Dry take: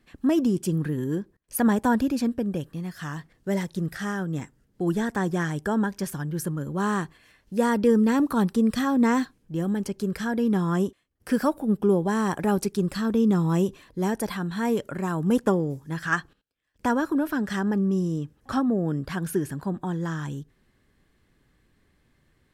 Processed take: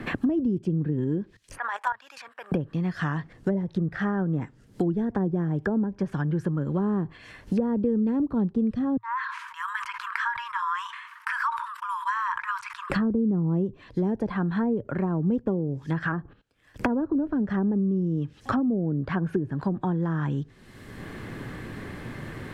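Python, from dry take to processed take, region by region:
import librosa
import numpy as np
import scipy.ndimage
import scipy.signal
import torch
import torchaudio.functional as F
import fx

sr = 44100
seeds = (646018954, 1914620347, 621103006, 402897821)

y = fx.chain(x, sr, fx.highpass(hz=1000.0, slope=24),
    fx.level_steps(step_db=14), at=(1.58, 2.52))
y = fx.chain(y, sr, fx.brickwall_highpass(low_hz=900.0),
    fx.high_shelf(hz=2300.0, db=-11.5),
    fx.sustainer(db_per_s=74.0), at=(8.97, 12.9))
y = fx.env_lowpass_down(y, sr, base_hz=520.0, full_db=-22.5)
y = fx.peak_eq(y, sr, hz=110.0, db=6.5, octaves=0.37)
y = fx.band_squash(y, sr, depth_pct=100)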